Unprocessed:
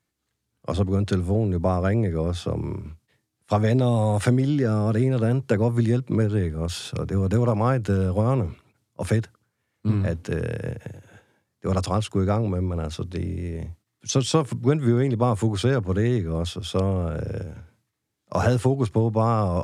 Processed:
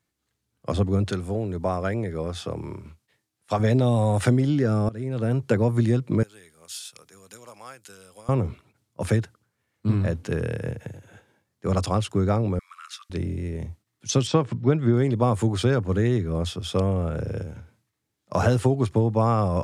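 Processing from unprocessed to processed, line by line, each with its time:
1.11–3.6 low shelf 370 Hz -7.5 dB
4.89–5.42 fade in, from -20.5 dB
6.23–8.29 differentiator
12.59–13.1 steep high-pass 1100 Hz 96 dB/oct
14.27–14.94 air absorption 130 m

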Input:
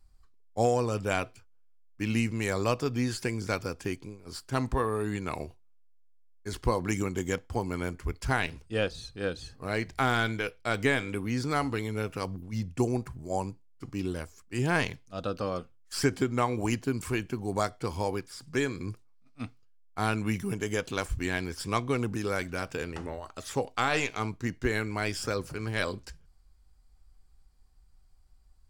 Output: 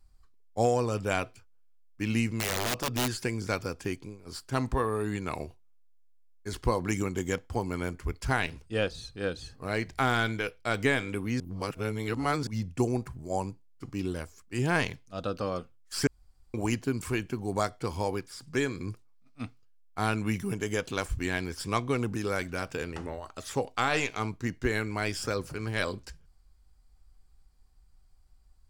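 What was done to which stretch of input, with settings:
2.27–3.1 wrapped overs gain 23 dB
11.4–12.47 reverse
16.07–16.54 room tone

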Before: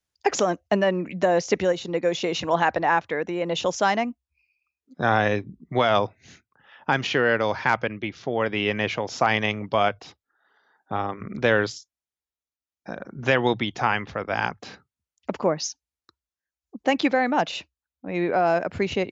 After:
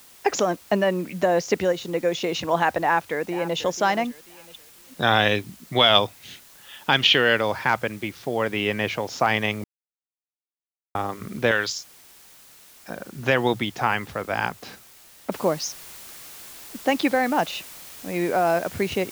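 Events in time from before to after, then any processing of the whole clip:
2.81–3.57 echo throw 0.49 s, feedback 30%, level -14.5 dB
4.1–7.41 bell 3300 Hz +15 dB 0.84 oct
9.64–10.95 mute
11.51–12.9 tilt shelf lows -9 dB, about 1400 Hz
15.32 noise floor step -50 dB -42 dB

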